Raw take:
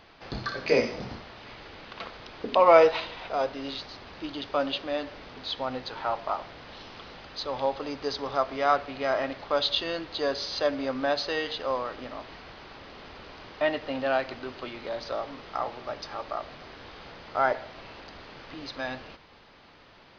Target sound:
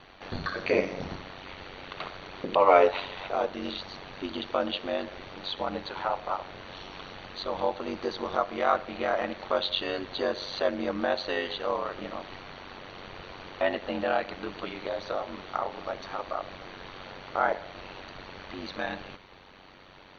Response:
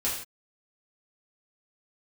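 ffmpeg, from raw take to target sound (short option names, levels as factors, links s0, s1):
-filter_complex "[0:a]acrossover=split=4500[s0][s1];[s1]acompressor=threshold=0.00316:ratio=4:attack=1:release=60[s2];[s0][s2]amix=inputs=2:normalize=0,bandreject=f=57.48:t=h:w=4,bandreject=f=114.96:t=h:w=4,bandreject=f=172.44:t=h:w=4,bandreject=f=229.92:t=h:w=4,asplit=2[s3][s4];[s4]acompressor=threshold=0.0224:ratio=6,volume=0.794[s5];[s3][s5]amix=inputs=2:normalize=0,aeval=exprs='val(0)*sin(2*PI*47*n/s)':c=same,asuperstop=centerf=5000:order=20:qfactor=7.9"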